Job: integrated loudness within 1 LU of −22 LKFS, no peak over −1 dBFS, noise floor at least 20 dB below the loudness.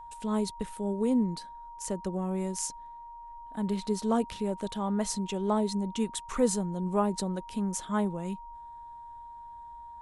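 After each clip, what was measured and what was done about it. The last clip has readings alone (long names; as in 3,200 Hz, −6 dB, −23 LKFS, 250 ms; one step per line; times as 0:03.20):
interfering tone 940 Hz; level of the tone −43 dBFS; integrated loudness −31.5 LKFS; sample peak −14.0 dBFS; target loudness −22.0 LKFS
→ notch filter 940 Hz, Q 30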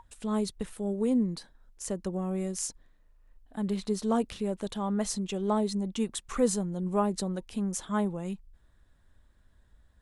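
interfering tone none found; integrated loudness −31.5 LKFS; sample peak −14.0 dBFS; target loudness −22.0 LKFS
→ level +9.5 dB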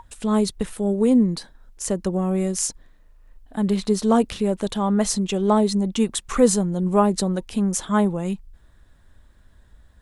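integrated loudness −22.0 LKFS; sample peak −4.5 dBFS; background noise floor −53 dBFS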